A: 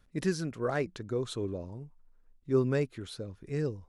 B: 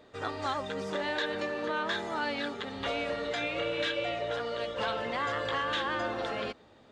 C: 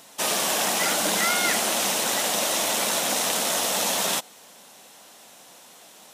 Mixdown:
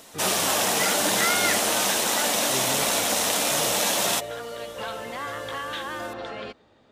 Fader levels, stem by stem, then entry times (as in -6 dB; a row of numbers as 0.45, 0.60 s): -8.0, -1.0, +0.5 dB; 0.00, 0.00, 0.00 s